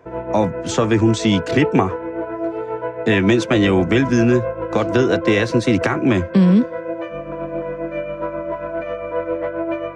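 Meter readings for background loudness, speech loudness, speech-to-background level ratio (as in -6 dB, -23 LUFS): -26.0 LUFS, -17.5 LUFS, 8.5 dB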